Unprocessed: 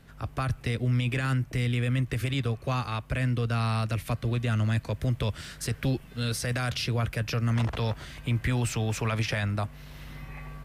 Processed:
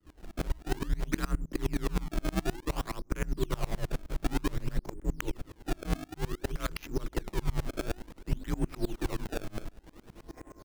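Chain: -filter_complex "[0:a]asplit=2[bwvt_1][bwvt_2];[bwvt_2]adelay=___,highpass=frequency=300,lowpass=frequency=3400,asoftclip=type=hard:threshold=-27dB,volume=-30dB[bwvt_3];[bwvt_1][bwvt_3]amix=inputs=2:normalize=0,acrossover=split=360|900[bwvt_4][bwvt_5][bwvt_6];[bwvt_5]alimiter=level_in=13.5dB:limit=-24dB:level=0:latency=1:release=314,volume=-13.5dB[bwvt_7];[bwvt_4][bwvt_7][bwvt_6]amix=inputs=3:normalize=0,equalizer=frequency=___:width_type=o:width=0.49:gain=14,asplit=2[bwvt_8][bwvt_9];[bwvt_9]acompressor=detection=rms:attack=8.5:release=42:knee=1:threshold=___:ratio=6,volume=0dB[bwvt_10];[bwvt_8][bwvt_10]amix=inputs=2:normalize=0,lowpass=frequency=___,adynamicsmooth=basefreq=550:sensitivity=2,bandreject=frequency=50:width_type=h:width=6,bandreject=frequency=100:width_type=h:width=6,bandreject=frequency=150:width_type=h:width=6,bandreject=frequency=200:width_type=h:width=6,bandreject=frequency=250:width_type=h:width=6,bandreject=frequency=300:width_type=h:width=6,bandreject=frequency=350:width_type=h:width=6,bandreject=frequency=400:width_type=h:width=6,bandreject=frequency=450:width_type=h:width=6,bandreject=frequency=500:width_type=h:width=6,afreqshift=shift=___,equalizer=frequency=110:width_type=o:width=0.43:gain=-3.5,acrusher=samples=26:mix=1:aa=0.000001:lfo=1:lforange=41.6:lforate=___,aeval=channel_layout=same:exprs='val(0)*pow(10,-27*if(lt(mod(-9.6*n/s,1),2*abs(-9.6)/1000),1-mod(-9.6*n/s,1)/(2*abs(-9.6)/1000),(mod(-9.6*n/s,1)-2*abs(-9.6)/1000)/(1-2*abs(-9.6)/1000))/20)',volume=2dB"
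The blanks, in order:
130, 400, -36dB, 8100, -89, 0.55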